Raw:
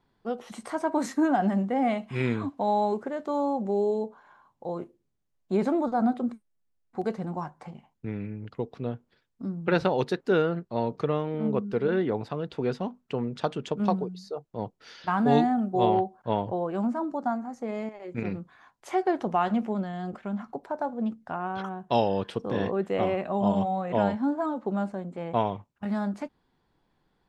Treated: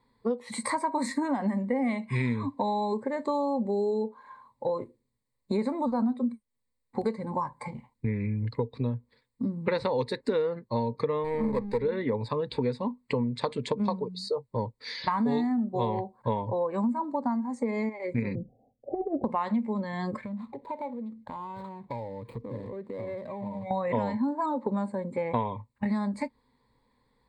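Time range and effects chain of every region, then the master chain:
11.24–11.78 s: partial rectifier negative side -12 dB + peaking EQ 810 Hz +3.5 dB 0.24 oct + waveshaping leveller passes 1
18.35–19.24 s: Chebyshev low-pass 780 Hz, order 10 + compressor with a negative ratio -28 dBFS, ratio -0.5
20.25–23.71 s: median filter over 25 samples + treble shelf 6 kHz -8.5 dB + compression 8:1, threshold -40 dBFS
whole clip: spectral noise reduction 9 dB; rippled EQ curve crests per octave 0.97, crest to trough 14 dB; compression 5:1, threshold -35 dBFS; trim +8.5 dB

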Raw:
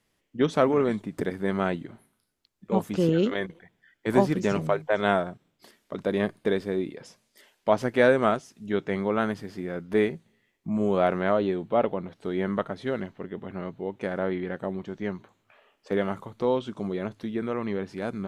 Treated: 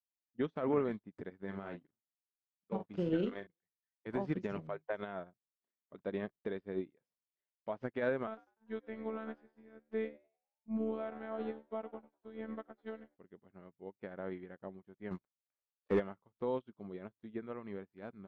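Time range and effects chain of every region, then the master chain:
1.42–3.47 s: companding laws mixed up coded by A + doubling 40 ms -6.5 dB
8.27–13.17 s: robot voice 221 Hz + frequency-shifting echo 98 ms, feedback 55%, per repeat +75 Hz, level -13.5 dB
15.11–16.00 s: CVSD coder 64 kbps + waveshaping leveller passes 2
whole clip: low-pass 2.9 kHz 12 dB/octave; peak limiter -17 dBFS; upward expansion 2.5:1, over -48 dBFS; trim -4.5 dB

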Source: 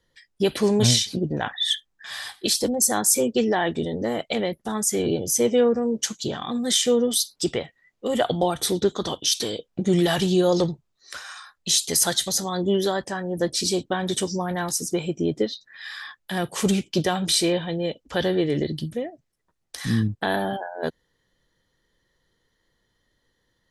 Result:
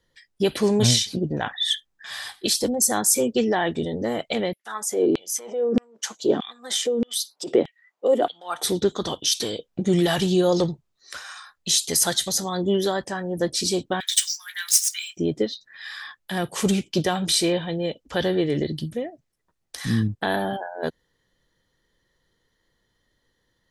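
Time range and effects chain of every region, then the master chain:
4.53–8.64 s: tilt shelf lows +8.5 dB, about 670 Hz + compressor with a negative ratio -22 dBFS + LFO high-pass saw down 1.6 Hz 250–3100 Hz
14.00–15.17 s: median filter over 3 samples + steep high-pass 1.6 kHz + treble shelf 2.4 kHz +11.5 dB
whole clip: none

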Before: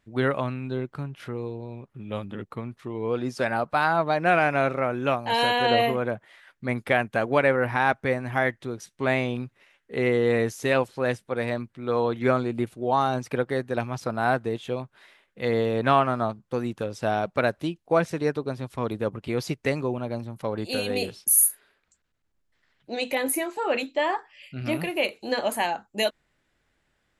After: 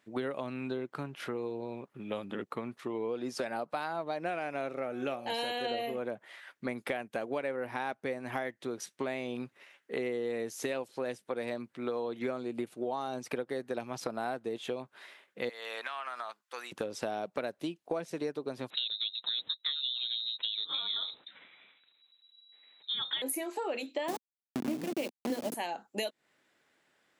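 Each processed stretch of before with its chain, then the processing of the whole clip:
4.74–5.99 s: band-stop 1 kHz, Q 6.9 + de-hum 184.1 Hz, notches 19
15.49–16.72 s: high-pass 1.4 kHz + compression 10:1, threshold -35 dBFS
18.70–23.22 s: bass shelf 370 Hz +7 dB + frequency inversion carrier 3.9 kHz
24.08–25.54 s: send-on-delta sampling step -25.5 dBFS + peaking EQ 240 Hz +13.5 dB 1.3 oct
whole clip: high-pass 260 Hz 12 dB/octave; dynamic bell 1.4 kHz, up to -7 dB, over -37 dBFS, Q 0.75; compression 6:1, threshold -34 dBFS; trim +2 dB

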